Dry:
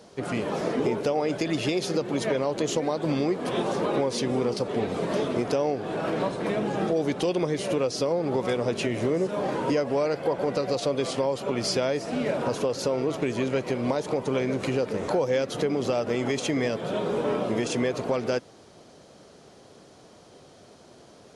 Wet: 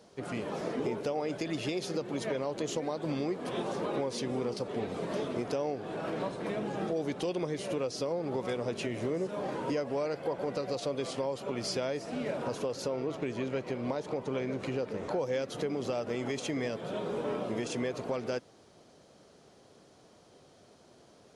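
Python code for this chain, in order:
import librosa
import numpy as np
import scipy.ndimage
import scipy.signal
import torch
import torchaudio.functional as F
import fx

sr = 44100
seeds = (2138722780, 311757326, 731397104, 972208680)

y = fx.high_shelf(x, sr, hz=8300.0, db=-11.0, at=(12.87, 15.19))
y = y * librosa.db_to_amplitude(-7.5)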